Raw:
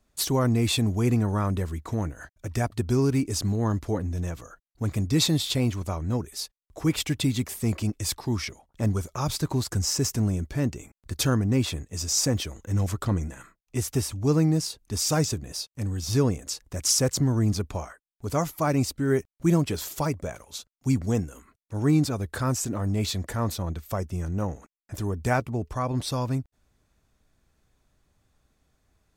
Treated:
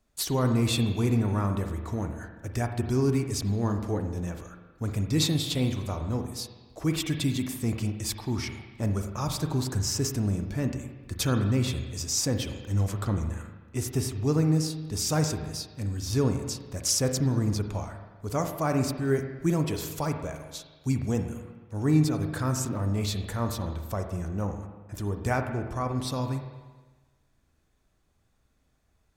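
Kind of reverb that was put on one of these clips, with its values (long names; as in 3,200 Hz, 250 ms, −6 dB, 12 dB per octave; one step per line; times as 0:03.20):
spring reverb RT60 1.3 s, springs 39/51 ms, chirp 50 ms, DRR 5.5 dB
level −3 dB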